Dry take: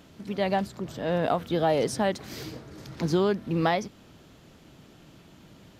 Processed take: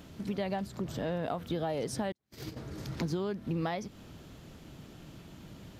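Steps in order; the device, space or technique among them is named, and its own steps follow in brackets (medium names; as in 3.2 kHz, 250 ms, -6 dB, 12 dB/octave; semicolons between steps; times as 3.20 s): ASMR close-microphone chain (bass shelf 170 Hz +6.5 dB; compression 5:1, threshold -31 dBFS, peak gain reduction 12.5 dB; treble shelf 11 kHz +4 dB); 2.12–2.57 s: gate -35 dBFS, range -42 dB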